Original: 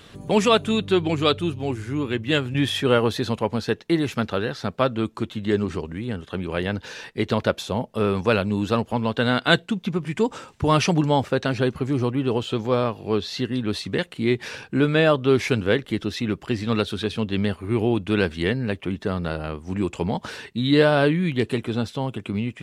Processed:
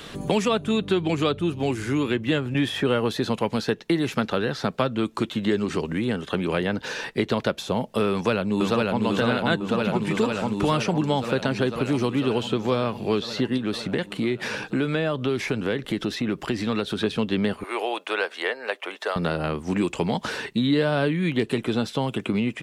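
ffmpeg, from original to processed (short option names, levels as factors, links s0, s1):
-filter_complex "[0:a]asplit=2[s0][s1];[s1]afade=t=in:st=8.1:d=0.01,afade=t=out:st=9.03:d=0.01,aecho=0:1:500|1000|1500|2000|2500|3000|3500|4000|4500|5000|5500|6000:0.891251|0.668438|0.501329|0.375996|0.281997|0.211498|0.158624|0.118968|0.0892257|0.0669193|0.0501895|0.0376421[s2];[s0][s2]amix=inputs=2:normalize=0,asettb=1/sr,asplit=3[s3][s4][s5];[s3]atrim=end=13.574[s6];[s4]atrim=start=13.57:end=17,asetpts=PTS-STARTPTS,afade=t=in:d=0.004:c=qsin,afade=t=out:st=3.426:d=0.004:c=qsin,acompressor=threshold=0.0316:ratio=2:attack=3.2:release=140:knee=1:detection=peak[s7];[s5]atrim=start=16.996[s8];[s6][s7]acrossfade=d=0.004:c1=hsin:c2=qsin[s9];[s9][s8]acrossfade=d=0.004:c1=qsin:c2=hsin,asettb=1/sr,asplit=3[s10][s11][s12];[s10]atrim=end=17.634[s13];[s11]atrim=start=17.63:end=19.16,asetpts=PTS-STARTPTS,afade=t=in:d=0.004:c=qsin,afade=t=out:st=1.526:d=0.004:c=qsin,highpass=f=560:w=0.5412,highpass=f=560:w=1.3066[s14];[s12]atrim=start=19.156[s15];[s13][s14]acrossfade=d=0.004:c1=hsin:c2=qsin[s16];[s16][s15]acrossfade=d=0.004:c1=qsin:c2=hsin,equalizer=f=88:w=2.2:g=-11.5,acrossover=split=230|1800[s17][s18][s19];[s17]acompressor=threshold=0.0141:ratio=4[s20];[s18]acompressor=threshold=0.0251:ratio=4[s21];[s19]acompressor=threshold=0.00794:ratio=4[s22];[s20][s21][s22]amix=inputs=3:normalize=0,volume=2.51"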